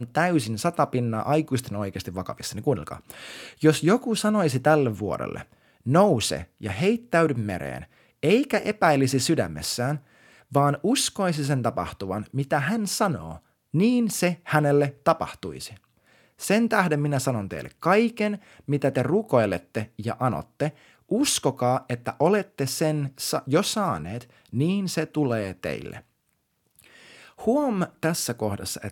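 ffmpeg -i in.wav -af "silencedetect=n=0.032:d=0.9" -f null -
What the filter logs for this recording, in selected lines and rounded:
silence_start: 25.98
silence_end: 27.41 | silence_duration: 1.43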